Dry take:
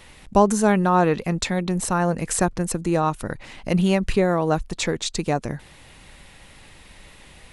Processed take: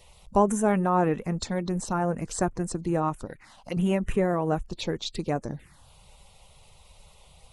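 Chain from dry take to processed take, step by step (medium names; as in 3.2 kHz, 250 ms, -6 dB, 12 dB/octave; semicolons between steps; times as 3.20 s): coarse spectral quantiser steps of 15 dB; 3.25–3.77 s: bass shelf 240 Hz -11.5 dB; touch-sensitive phaser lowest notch 240 Hz, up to 4.5 kHz, full sweep at -19.5 dBFS; trim -4.5 dB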